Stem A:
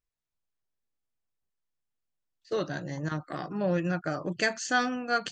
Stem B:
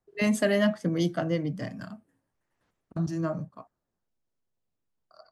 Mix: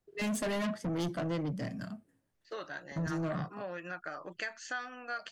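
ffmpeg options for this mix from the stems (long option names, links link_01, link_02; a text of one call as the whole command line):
ffmpeg -i stem1.wav -i stem2.wav -filter_complex "[0:a]highpass=frequency=290:poles=1,equalizer=frequency=1600:width=0.35:gain=14,acompressor=threshold=-23dB:ratio=3,volume=-14.5dB[link_01];[1:a]equalizer=frequency=1000:width=1.5:gain=-5.5,asoftclip=type=tanh:threshold=-31dB,volume=0.5dB[link_02];[link_01][link_02]amix=inputs=2:normalize=0" out.wav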